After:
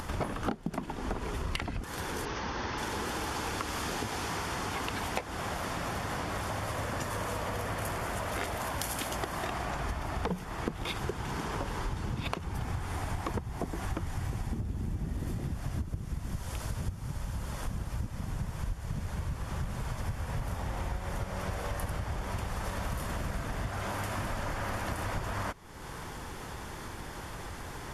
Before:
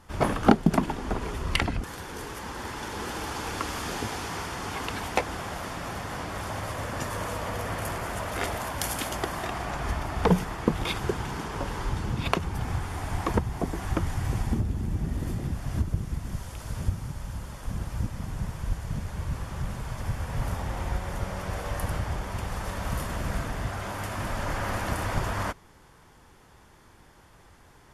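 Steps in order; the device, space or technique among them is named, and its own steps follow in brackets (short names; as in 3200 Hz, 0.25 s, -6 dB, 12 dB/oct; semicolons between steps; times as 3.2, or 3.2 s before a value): upward and downward compression (upward compressor, threshold -33 dBFS; compressor 6:1, threshold -34 dBFS, peak gain reduction 21 dB); 2.25–2.78 steep low-pass 6400 Hz 96 dB/oct; gain +3 dB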